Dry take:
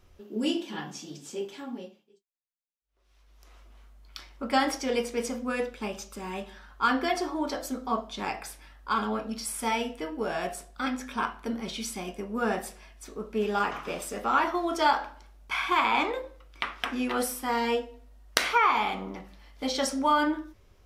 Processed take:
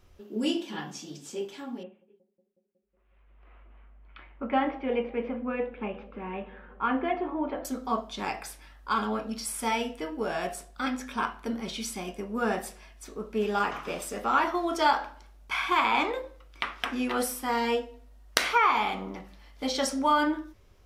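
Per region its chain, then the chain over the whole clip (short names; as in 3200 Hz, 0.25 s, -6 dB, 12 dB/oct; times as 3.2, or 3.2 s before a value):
1.83–7.65 steep low-pass 2700 Hz + dynamic EQ 1600 Hz, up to -6 dB, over -44 dBFS, Q 1.6 + analogue delay 0.183 s, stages 1024, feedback 79%, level -21.5 dB
whole clip: dry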